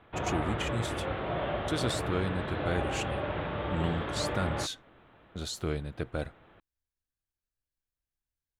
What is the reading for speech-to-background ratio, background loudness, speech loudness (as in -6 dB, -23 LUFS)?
-1.0 dB, -34.0 LUFS, -35.0 LUFS